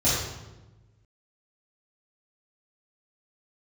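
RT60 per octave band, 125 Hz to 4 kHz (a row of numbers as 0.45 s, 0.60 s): 1.8 s, 1.5 s, 1.2 s, 1.0 s, 0.85 s, 0.75 s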